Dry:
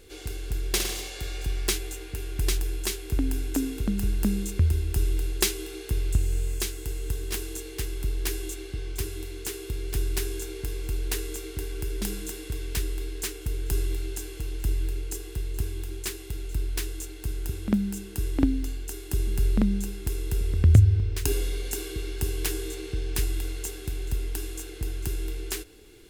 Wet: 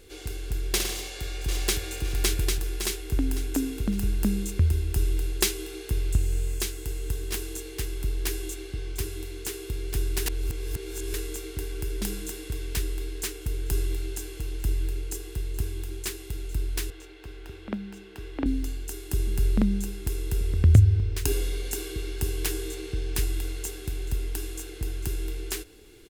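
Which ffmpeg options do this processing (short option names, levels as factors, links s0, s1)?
-filter_complex "[0:a]asplit=2[s0][s1];[s1]afade=t=in:st=0.92:d=0.01,afade=t=out:st=1.88:d=0.01,aecho=0:1:560|1120|1680|2240|2800|3360:1|0.4|0.16|0.064|0.0256|0.01024[s2];[s0][s2]amix=inputs=2:normalize=0,asettb=1/sr,asplit=3[s3][s4][s5];[s3]atrim=end=16.904[s6];[s4]atrim=start=16.9:end=18.46,asetpts=PTS-STARTPTS,afade=t=in:d=0.004:c=qsin,afade=t=out:st=1.556:d=0.004:c=qsin,acrossover=split=350 4000:gain=0.251 1 0.112[s7][s8][s9];[s7][s8][s9]amix=inputs=3:normalize=0[s10];[s5]atrim=start=18.456[s11];[s6][s10]acrossfade=d=0.004:c1=hsin:c2=qsin[s12];[s12][s11]acrossfade=d=0.004:c1=qsin:c2=hsin,asplit=3[s13][s14][s15];[s13]atrim=end=10.262[s16];[s14]atrim=start=10.258:end=11.142,asetpts=PTS-STARTPTS,areverse[s17];[s15]atrim=start=11.138[s18];[s16][s17]acrossfade=d=0.004:c1=hsin:c2=hsin[s19];[s19][s18]acrossfade=d=0.004:c1=hsin:c2=hsin"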